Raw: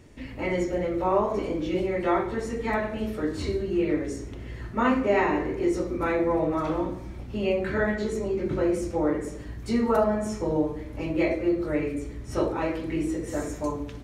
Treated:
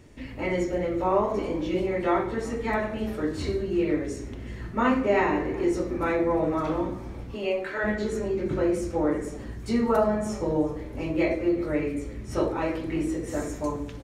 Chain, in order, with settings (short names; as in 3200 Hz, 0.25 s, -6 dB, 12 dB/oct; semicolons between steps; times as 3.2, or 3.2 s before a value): 7.34–7.83 HPF 290 Hz -> 650 Hz 12 dB/oct; frequency-shifting echo 0.371 s, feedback 58%, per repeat -68 Hz, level -21 dB